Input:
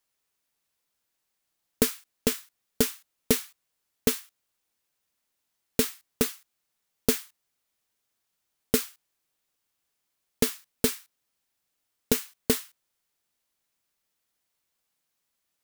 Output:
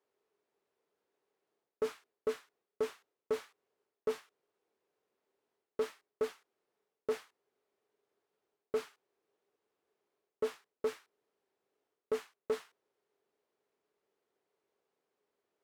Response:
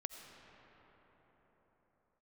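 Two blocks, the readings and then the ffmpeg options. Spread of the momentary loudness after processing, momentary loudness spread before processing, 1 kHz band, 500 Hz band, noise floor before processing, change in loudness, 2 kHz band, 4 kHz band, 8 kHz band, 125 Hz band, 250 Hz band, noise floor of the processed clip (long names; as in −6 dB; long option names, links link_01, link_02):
3 LU, 8 LU, −5.0 dB, −4.0 dB, −80 dBFS, −11.5 dB, −13.0 dB, −19.5 dB, −26.0 dB, below −20 dB, −20.0 dB, below −85 dBFS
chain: -af "equalizer=frequency=410:width_type=o:width=0.38:gain=14.5,areverse,acompressor=threshold=-24dB:ratio=6,areverse,aeval=exprs='(tanh(44.7*val(0)+0.45)-tanh(0.45))/44.7':channel_layout=same,bandpass=frequency=530:width_type=q:width=0.74:csg=0,volume=6.5dB"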